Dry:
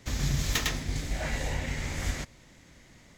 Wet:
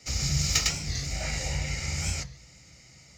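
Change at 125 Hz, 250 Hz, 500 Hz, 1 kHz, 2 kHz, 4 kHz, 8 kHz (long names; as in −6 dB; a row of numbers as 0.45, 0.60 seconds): +2.0, −1.5, −3.0, −1.5, +0.5, +5.5, +8.0 decibels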